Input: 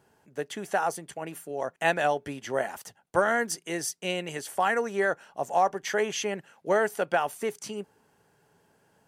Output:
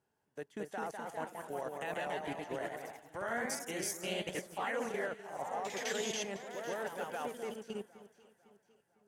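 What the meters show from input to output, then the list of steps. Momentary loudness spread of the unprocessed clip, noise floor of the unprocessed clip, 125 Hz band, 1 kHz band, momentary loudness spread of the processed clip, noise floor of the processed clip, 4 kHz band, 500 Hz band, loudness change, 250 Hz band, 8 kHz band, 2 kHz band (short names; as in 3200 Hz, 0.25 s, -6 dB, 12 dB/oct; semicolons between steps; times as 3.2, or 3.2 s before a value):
12 LU, -67 dBFS, -9.0 dB, -12.0 dB, 9 LU, -79 dBFS, -6.0 dB, -11.0 dB, -10.5 dB, -8.0 dB, -6.5 dB, -11.0 dB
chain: level quantiser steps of 18 dB; echo with dull and thin repeats by turns 0.252 s, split 1600 Hz, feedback 66%, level -9 dB; echoes that change speed 0.242 s, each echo +1 st, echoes 3; upward expander 1.5:1, over -48 dBFS; gain -2 dB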